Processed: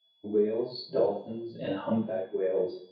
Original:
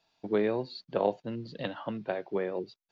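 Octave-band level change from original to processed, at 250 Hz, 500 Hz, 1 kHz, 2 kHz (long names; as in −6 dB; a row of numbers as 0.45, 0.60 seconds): +2.5, +3.0, −3.5, −6.5 decibels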